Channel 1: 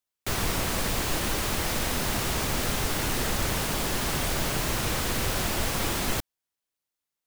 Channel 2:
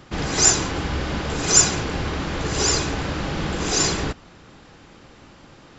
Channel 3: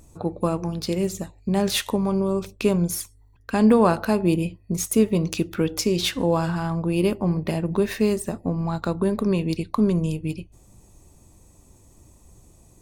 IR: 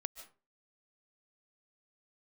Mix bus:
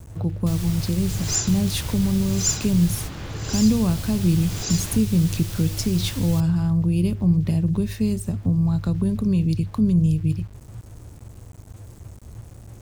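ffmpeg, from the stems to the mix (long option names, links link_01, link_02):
-filter_complex "[0:a]adelay=200,volume=-5.5dB[link_01];[1:a]adelay=900,volume=-7.5dB[link_02];[2:a]equalizer=frequency=77:width=0.32:gain=13,volume=-2.5dB,asplit=2[link_03][link_04];[link_04]apad=whole_len=329198[link_05];[link_01][link_05]sidechaingate=range=-33dB:threshold=-35dB:ratio=16:detection=peak[link_06];[link_06][link_02][link_03]amix=inputs=3:normalize=0,equalizer=frequency=110:width_type=o:width=0.43:gain=10.5,acrossover=split=190|3000[link_07][link_08][link_09];[link_08]acompressor=threshold=-39dB:ratio=2[link_10];[link_07][link_10][link_09]amix=inputs=3:normalize=0,aeval=exprs='val(0)*gte(abs(val(0)),0.00668)':channel_layout=same"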